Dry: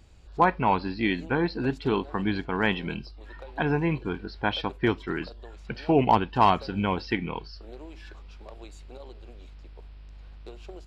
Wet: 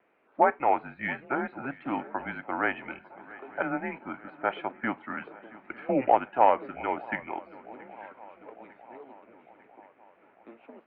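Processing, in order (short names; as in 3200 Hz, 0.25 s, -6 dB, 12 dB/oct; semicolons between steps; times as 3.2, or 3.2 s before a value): mistuned SSB -130 Hz 460–2400 Hz; vibrato 1.8 Hz 30 cents; swung echo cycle 0.9 s, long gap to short 3:1, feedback 57%, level -21 dB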